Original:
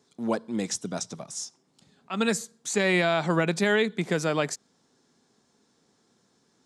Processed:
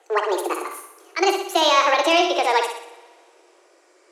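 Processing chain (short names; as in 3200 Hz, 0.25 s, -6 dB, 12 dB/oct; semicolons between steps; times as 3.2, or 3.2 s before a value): speed glide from 188% -> 135%; in parallel at +1 dB: compressor, threshold -37 dBFS, peak gain reduction 17 dB; on the sum: steep high-pass 330 Hz 96 dB/oct; air absorption 73 m; on a send: flutter echo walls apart 10.5 m, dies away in 0.61 s; on the sum: two-slope reverb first 0.59 s, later 2.4 s, from -18 dB, DRR 9 dB; gain +5 dB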